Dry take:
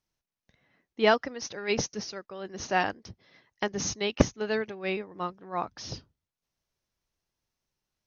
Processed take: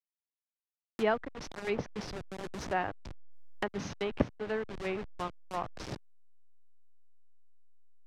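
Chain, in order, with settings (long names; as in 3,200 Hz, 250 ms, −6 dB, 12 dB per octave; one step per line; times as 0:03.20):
hold until the input has moved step −32 dBFS
treble cut that deepens with the level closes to 2,000 Hz, closed at −26 dBFS
multiband upward and downward compressor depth 40%
level −4 dB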